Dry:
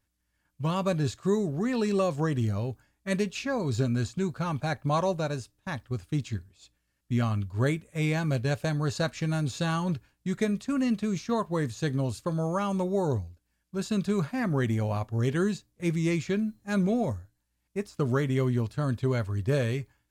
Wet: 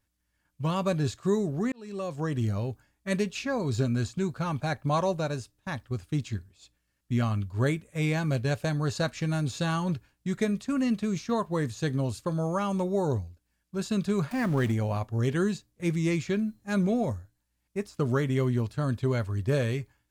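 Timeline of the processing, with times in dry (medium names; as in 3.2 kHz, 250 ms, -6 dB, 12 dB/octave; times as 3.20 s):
1.72–2.47 s: fade in linear
14.31–14.72 s: jump at every zero crossing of -37.5 dBFS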